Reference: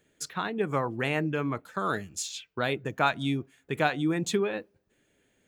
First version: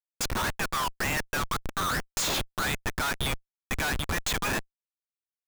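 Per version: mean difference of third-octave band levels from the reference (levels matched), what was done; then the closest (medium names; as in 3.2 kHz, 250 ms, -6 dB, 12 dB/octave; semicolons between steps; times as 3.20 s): 15.5 dB: steep high-pass 880 Hz 48 dB/octave; in parallel at -10 dB: saturation -25.5 dBFS, distortion -11 dB; on the sum: waveshaping leveller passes 3; Schmitt trigger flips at -26 dBFS; trim -2 dB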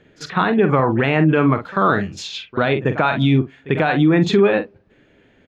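5.5 dB: distance through air 260 m; doubling 45 ms -11 dB; reverse echo 45 ms -21 dB; loudness maximiser +22 dB; trim -5.5 dB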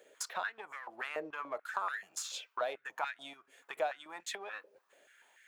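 10.0 dB: partial rectifier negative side -3 dB; compression 16:1, threshold -42 dBFS, peak gain reduction 22 dB; step-sequenced high-pass 6.9 Hz 520–1800 Hz; trim +5 dB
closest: second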